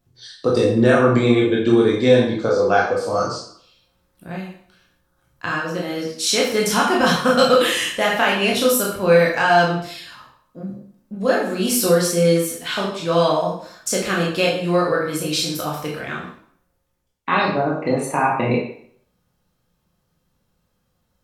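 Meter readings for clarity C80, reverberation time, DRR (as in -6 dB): 7.0 dB, 0.60 s, -4.0 dB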